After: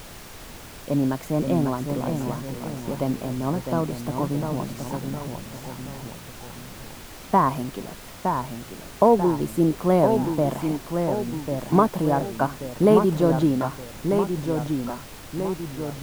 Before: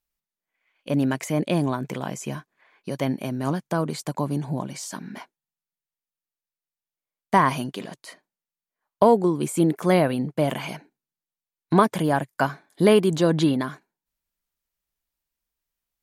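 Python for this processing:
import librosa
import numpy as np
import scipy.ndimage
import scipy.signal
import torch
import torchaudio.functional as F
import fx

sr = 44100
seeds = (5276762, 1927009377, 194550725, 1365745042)

y = fx.echo_pitch(x, sr, ms=478, semitones=-1, count=3, db_per_echo=-6.0)
y = fx.band_shelf(y, sr, hz=4000.0, db=-12.0, octaves=2.9)
y = fx.dmg_noise_colour(y, sr, seeds[0], colour='pink', level_db=-41.0)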